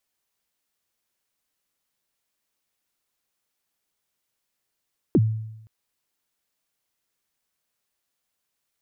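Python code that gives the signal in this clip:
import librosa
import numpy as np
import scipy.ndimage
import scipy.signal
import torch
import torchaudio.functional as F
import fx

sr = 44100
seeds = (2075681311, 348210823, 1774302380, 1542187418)

y = fx.drum_kick(sr, seeds[0], length_s=0.52, level_db=-12.0, start_hz=410.0, end_hz=110.0, sweep_ms=44.0, decay_s=0.88, click=False)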